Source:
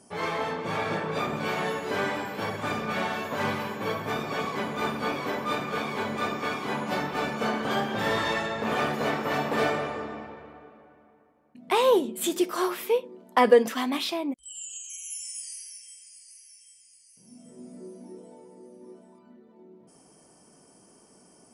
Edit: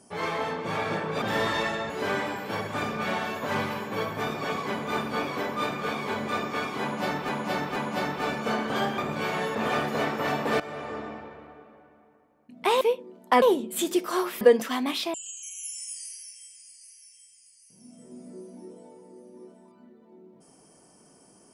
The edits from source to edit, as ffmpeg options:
-filter_complex "[0:a]asplit=12[s0][s1][s2][s3][s4][s5][s6][s7][s8][s9][s10][s11];[s0]atrim=end=1.222[s12];[s1]atrim=start=7.928:end=8.612[s13];[s2]atrim=start=1.788:end=7.182[s14];[s3]atrim=start=6.708:end=7.182[s15];[s4]atrim=start=6.708:end=7.932[s16];[s5]atrim=start=1.218:end=1.792[s17];[s6]atrim=start=8.608:end=9.66,asetpts=PTS-STARTPTS,afade=t=out:st=1.048:d=0.004:c=hsin:silence=0.133352[s18];[s7]atrim=start=9.66:end=11.872,asetpts=PTS-STARTPTS,afade=t=in:d=0.38:silence=0.133352[s19];[s8]atrim=start=12.858:end=13.472[s20];[s9]atrim=start=11.868:end=12.862[s21];[s10]atrim=start=13.468:end=14.202[s22];[s11]atrim=start=14.608[s23];[s12][s13]acrossfade=d=0.004:c1=hsin:c2=hsin[s24];[s24][s14]acrossfade=d=0.004:c1=hsin:c2=hsin[s25];[s25][s15]acrossfade=d=0.004:c1=hsin:c2=hsin[s26];[s26][s16]acrossfade=d=0.004:c1=hsin:c2=hsin[s27];[s27][s17]acrossfade=d=0.004:c1=hsin:c2=hsin[s28];[s18][s19]concat=n=2:v=0:a=1[s29];[s28][s29]acrossfade=d=0.004:c1=hsin:c2=hsin[s30];[s30][s20]acrossfade=d=0.004:c1=hsin:c2=hsin[s31];[s31][s21]acrossfade=d=0.004:c1=hsin:c2=hsin[s32];[s32][s22]acrossfade=d=0.004:c1=hsin:c2=hsin[s33];[s33][s23]acrossfade=d=0.004:c1=hsin:c2=hsin"

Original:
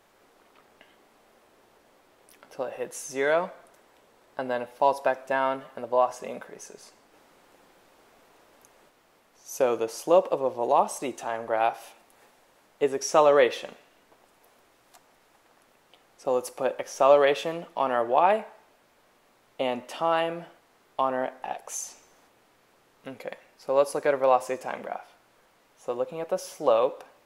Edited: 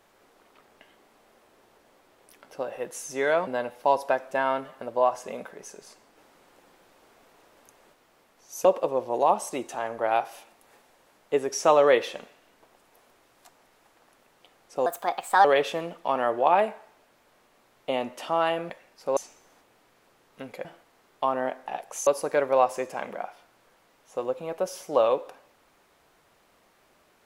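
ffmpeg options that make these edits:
-filter_complex "[0:a]asplit=9[s0][s1][s2][s3][s4][s5][s6][s7][s8];[s0]atrim=end=3.472[s9];[s1]atrim=start=4.428:end=9.612[s10];[s2]atrim=start=10.138:end=16.354[s11];[s3]atrim=start=16.35:end=17.16,asetpts=PTS-STARTPTS,asetrate=60858,aresample=44100[s12];[s4]atrim=start=17.156:end=20.412[s13];[s5]atrim=start=23.308:end=23.782[s14];[s6]atrim=start=21.828:end=23.312[s15];[s7]atrim=start=20.408:end=21.832[s16];[s8]atrim=start=23.778[s17];[s9][s10]acrossfade=d=0.004:c1=hsin:c2=hsin[s18];[s18][s11]acrossfade=d=0.004:c1=hsin:c2=hsin[s19];[s19][s12]acrossfade=d=0.004:c1=hsin:c2=hsin[s20];[s20][s13]acrossfade=d=0.004:c1=hsin:c2=hsin[s21];[s21][s14]acrossfade=d=0.004:c1=hsin:c2=hsin[s22];[s22][s15]acrossfade=d=0.004:c1=hsin:c2=hsin[s23];[s23][s16]acrossfade=d=0.004:c1=hsin:c2=hsin[s24];[s24][s17]acrossfade=d=0.004:c1=hsin:c2=hsin"

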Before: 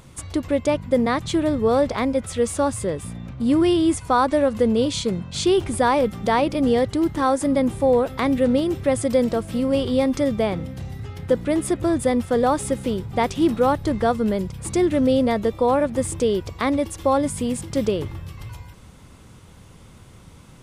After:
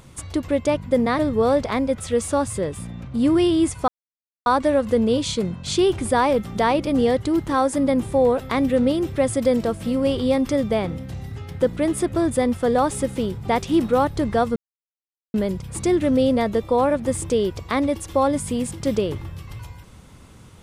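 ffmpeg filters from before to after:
-filter_complex "[0:a]asplit=4[s0][s1][s2][s3];[s0]atrim=end=1.192[s4];[s1]atrim=start=1.448:end=4.14,asetpts=PTS-STARTPTS,afade=t=out:st=2.688:d=0.004:c=hsin,apad=pad_dur=0.58[s5];[s2]atrim=start=4.14:end=14.24,asetpts=PTS-STARTPTS,afade=t=in:d=0.004:c=hsin,afade=t=out:st=10.096:d=0.004:c=hsin,apad=pad_dur=0.78[s6];[s3]atrim=start=14.24,asetpts=PTS-STARTPTS,afade=t=in:d=0.004:c=hsin[s7];[s5][s6][s7]concat=n=3:v=0:a=1[s8];[s4][s8]acrossfade=d=0.004:c1=hsin:c2=hsin"

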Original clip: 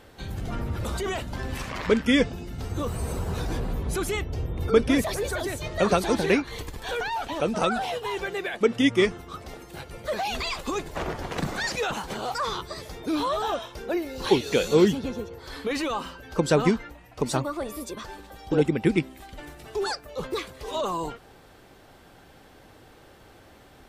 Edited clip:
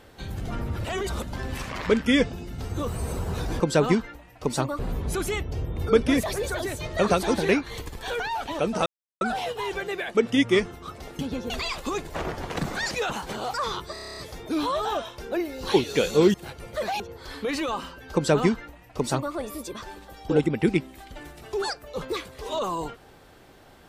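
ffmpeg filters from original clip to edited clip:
-filter_complex "[0:a]asplit=18[s0][s1][s2][s3][s4][s5][s6][s7][s8][s9][s10][s11][s12][s13][s14][s15][s16][s17];[s0]atrim=end=0.842[s18];[s1]atrim=start=0.838:end=1.232,asetpts=PTS-STARTPTS,areverse[s19];[s2]atrim=start=1.228:end=3.602[s20];[s3]atrim=start=16.358:end=17.552[s21];[s4]atrim=start=3.598:end=7.67,asetpts=PTS-STARTPTS,afade=t=out:st=4.068:d=0.004:c=hsin,apad=pad_dur=0.35[s22];[s5]atrim=start=7.67:end=9.652,asetpts=PTS-STARTPTS,afade=t=in:d=0.004:c=hsin[s23];[s6]atrim=start=14.908:end=15.222[s24];[s7]atrim=start=10.308:end=12.772[s25];[s8]atrim=start=12.738:end=12.772[s26];[s9]atrim=start=12.738:end=12.772[s27];[s10]atrim=start=12.738:end=12.772[s28];[s11]atrim=start=12.738:end=12.772[s29];[s12]atrim=start=12.738:end=12.772[s30];[s13]atrim=start=12.738:end=12.772[s31];[s14]atrim=start=12.738:end=12.772[s32];[s15]atrim=start=12.738:end=14.912[s33];[s16]atrim=start=9.648:end=10.312[s34];[s17]atrim=start=15.218[s35];[s18][s19]acrossfade=d=0.004:c1=hsin:c2=hsin[s36];[s36][s20]acrossfade=d=0.004:c1=hsin:c2=hsin[s37];[s37][s21]acrossfade=d=0.004:c1=hsin:c2=hsin[s38];[s22][s23]concat=n=2:v=0:a=1[s39];[s38][s39]acrossfade=d=0.004:c1=hsin:c2=hsin[s40];[s40][s24]acrossfade=d=0.004:c1=hsin:c2=hsin[s41];[s41][s25]acrossfade=d=0.004:c1=hsin:c2=hsin[s42];[s42][s26]acrossfade=d=0.004:c1=hsin:c2=hsin[s43];[s43][s27]acrossfade=d=0.004:c1=hsin:c2=hsin[s44];[s44][s28]acrossfade=d=0.004:c1=hsin:c2=hsin[s45];[s45][s29]acrossfade=d=0.004:c1=hsin:c2=hsin[s46];[s46][s30]acrossfade=d=0.004:c1=hsin:c2=hsin[s47];[s47][s31]acrossfade=d=0.004:c1=hsin:c2=hsin[s48];[s48][s32]acrossfade=d=0.004:c1=hsin:c2=hsin[s49];[s49][s33]acrossfade=d=0.004:c1=hsin:c2=hsin[s50];[s50][s34]acrossfade=d=0.004:c1=hsin:c2=hsin[s51];[s51][s35]acrossfade=d=0.004:c1=hsin:c2=hsin"

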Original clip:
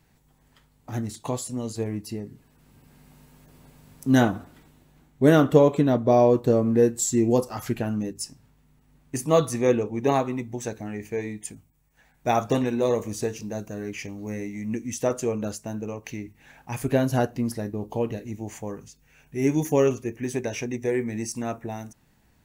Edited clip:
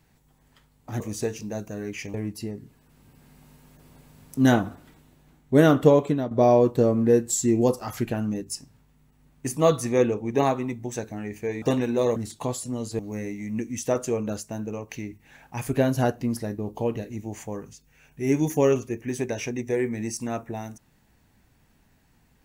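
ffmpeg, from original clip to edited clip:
-filter_complex "[0:a]asplit=7[s0][s1][s2][s3][s4][s5][s6];[s0]atrim=end=1.002[s7];[s1]atrim=start=12.998:end=14.142[s8];[s2]atrim=start=1.828:end=6,asetpts=PTS-STARTPTS,afade=t=out:st=3.682:d=0.49:c=qsin:silence=0.266073[s9];[s3]atrim=start=6:end=11.312,asetpts=PTS-STARTPTS,afade=t=in:d=0.004:c=hsin:silence=0.266073[s10];[s4]atrim=start=12.458:end=13.002[s11];[s5]atrim=start=0.998:end=1.832[s12];[s6]atrim=start=14.138[s13];[s7][s8]acrossfade=d=0.004:c1=hsin:c2=hsin[s14];[s9][s10]concat=n=2:v=0:a=1[s15];[s14][s15]acrossfade=d=0.004:c1=hsin:c2=hsin[s16];[s16][s11]acrossfade=d=0.004:c1=hsin:c2=hsin[s17];[s17][s12]acrossfade=d=0.004:c1=hsin:c2=hsin[s18];[s18][s13]acrossfade=d=0.004:c1=hsin:c2=hsin"

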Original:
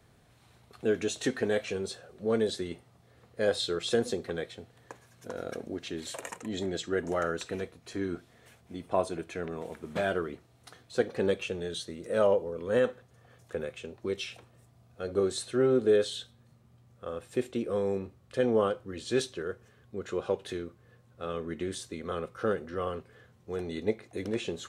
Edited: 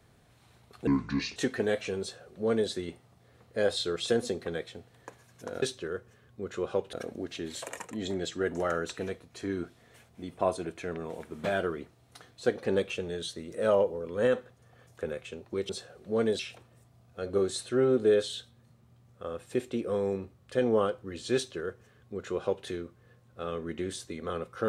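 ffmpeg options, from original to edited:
-filter_complex "[0:a]asplit=7[s0][s1][s2][s3][s4][s5][s6];[s0]atrim=end=0.874[s7];[s1]atrim=start=0.87:end=1.19,asetpts=PTS-STARTPTS,asetrate=28665,aresample=44100[s8];[s2]atrim=start=1.186:end=5.452[s9];[s3]atrim=start=19.168:end=20.482[s10];[s4]atrim=start=5.448:end=14.212[s11];[s5]atrim=start=1.828:end=2.532[s12];[s6]atrim=start=14.208[s13];[s7][s8]acrossfade=d=0.004:c1=hsin:c2=hsin[s14];[s14][s9]acrossfade=d=0.004:c1=hsin:c2=hsin[s15];[s15][s10]acrossfade=d=0.004:c1=hsin:c2=hsin[s16];[s16][s11]acrossfade=d=0.004:c1=hsin:c2=hsin[s17];[s17][s12]acrossfade=d=0.004:c1=hsin:c2=hsin[s18];[s18][s13]acrossfade=d=0.004:c1=hsin:c2=hsin"

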